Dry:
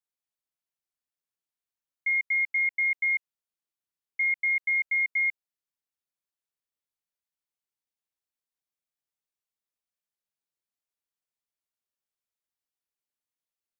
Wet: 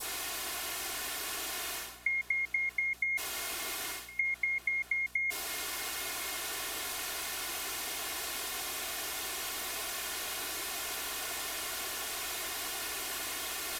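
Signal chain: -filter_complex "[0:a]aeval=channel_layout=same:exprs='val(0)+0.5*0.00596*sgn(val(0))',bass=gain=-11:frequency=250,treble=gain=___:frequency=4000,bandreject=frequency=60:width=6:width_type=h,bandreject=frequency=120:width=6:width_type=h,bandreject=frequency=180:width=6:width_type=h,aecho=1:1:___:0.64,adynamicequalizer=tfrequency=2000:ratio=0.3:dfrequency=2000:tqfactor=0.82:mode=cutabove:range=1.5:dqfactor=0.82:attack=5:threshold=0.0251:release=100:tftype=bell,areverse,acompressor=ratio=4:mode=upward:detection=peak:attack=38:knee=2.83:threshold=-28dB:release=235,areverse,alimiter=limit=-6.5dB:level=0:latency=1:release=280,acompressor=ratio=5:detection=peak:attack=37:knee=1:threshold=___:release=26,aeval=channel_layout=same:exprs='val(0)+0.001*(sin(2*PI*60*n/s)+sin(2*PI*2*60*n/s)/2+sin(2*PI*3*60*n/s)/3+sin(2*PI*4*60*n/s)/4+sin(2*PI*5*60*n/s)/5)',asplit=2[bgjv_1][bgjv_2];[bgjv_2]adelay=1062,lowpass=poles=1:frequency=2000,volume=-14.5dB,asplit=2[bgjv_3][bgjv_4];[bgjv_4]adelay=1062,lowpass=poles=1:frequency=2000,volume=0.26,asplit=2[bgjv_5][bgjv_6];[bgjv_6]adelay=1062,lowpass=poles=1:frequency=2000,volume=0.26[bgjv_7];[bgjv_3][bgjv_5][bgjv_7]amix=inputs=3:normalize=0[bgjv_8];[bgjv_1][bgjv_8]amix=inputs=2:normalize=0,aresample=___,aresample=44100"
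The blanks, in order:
-5, 2.8, -36dB, 32000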